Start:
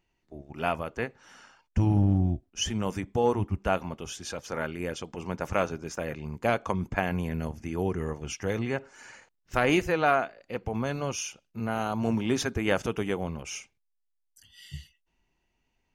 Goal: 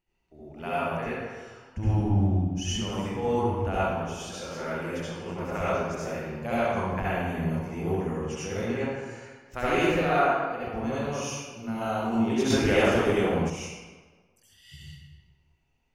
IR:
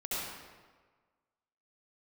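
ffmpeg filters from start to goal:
-filter_complex "[1:a]atrim=start_sample=2205[link_01];[0:a][link_01]afir=irnorm=-1:irlink=0,asettb=1/sr,asplit=3[link_02][link_03][link_04];[link_02]atrim=end=12.504[link_05];[link_03]atrim=start=12.5:end=13.5,asetpts=PTS-STARTPTS,afade=type=in:duration=0.004:curve=qsin,afade=type=out:start_time=0.996:duration=0.004:curve=qsin,acontrast=37[link_06];[link_04]atrim=start=13.496[link_07];[link_05][link_06]acrossfade=duration=0.004:curve1=hsin:curve2=qsin[link_08];[link_08][link_07]acrossfade=duration=0.004:curve1=qsin:curve2=hsin,volume=-4dB"

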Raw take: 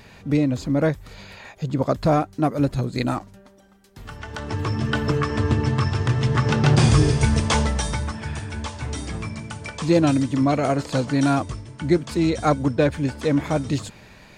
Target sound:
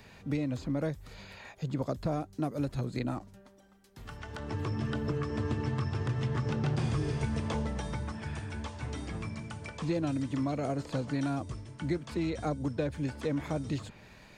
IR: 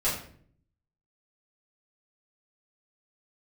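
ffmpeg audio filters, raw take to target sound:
-filter_complex "[0:a]acrossover=split=93|670|3500[link_01][link_02][link_03][link_04];[link_01]acompressor=threshold=-35dB:ratio=4[link_05];[link_02]acompressor=threshold=-23dB:ratio=4[link_06];[link_03]acompressor=threshold=-36dB:ratio=4[link_07];[link_04]acompressor=threshold=-48dB:ratio=4[link_08];[link_05][link_06][link_07][link_08]amix=inputs=4:normalize=0,volume=-7dB"

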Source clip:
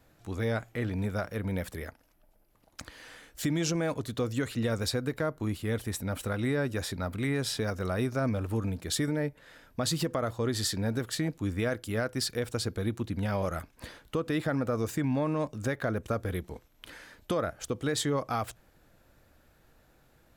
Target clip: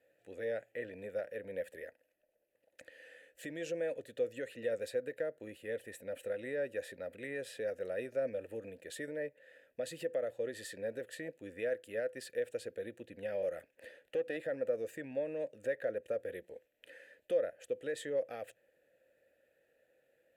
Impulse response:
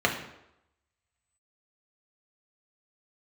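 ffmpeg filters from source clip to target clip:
-filter_complex "[0:a]aexciter=amount=5.9:drive=4.1:freq=7400,asettb=1/sr,asplit=3[link_01][link_02][link_03];[link_01]atrim=end=13.754[link_04];[link_02]atrim=start=13.75:end=14.37,asetpts=PTS-STARTPTS,afade=type=in:duration=0.004:curve=qsin,afade=type=out:start_time=0.616:duration=0.004:curve=qsin,aeval=exprs='0.126*(cos(1*acos(clip(val(0)/0.126,-1,1)))-cos(1*PI/2))+0.0398*(cos(2*acos(clip(val(0)/0.126,-1,1)))-cos(2*PI/2))+0.0112*(cos(4*acos(clip(val(0)/0.126,-1,1)))-cos(4*PI/2))+0.0158*(cos(6*acos(clip(val(0)/0.126,-1,1)))-cos(6*PI/2))':channel_layout=same[link_05];[link_03]atrim=start=14.366[link_06];[link_04][link_05]acrossfade=duration=0.004:curve1=hsin:curve2=qsin[link_07];[link_07][link_06]acrossfade=duration=0.004:curve1=qsin:curve2=hsin,asplit=3[link_08][link_09][link_10];[link_08]bandpass=frequency=530:width_type=q:width=8,volume=0dB[link_11];[link_09]bandpass=frequency=1840:width_type=q:width=8,volume=-6dB[link_12];[link_10]bandpass=frequency=2480:width_type=q:width=8,volume=-9dB[link_13];[link_11][link_12][link_13]amix=inputs=3:normalize=0,volume=3dB"

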